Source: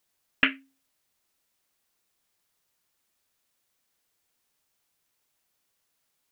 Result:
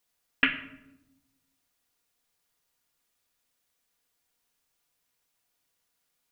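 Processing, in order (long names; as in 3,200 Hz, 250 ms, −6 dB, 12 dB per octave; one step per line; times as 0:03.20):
parametric band 210 Hz −5 dB 0.39 octaves
rectangular room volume 3,000 cubic metres, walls furnished, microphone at 1.8 metres
level −2.5 dB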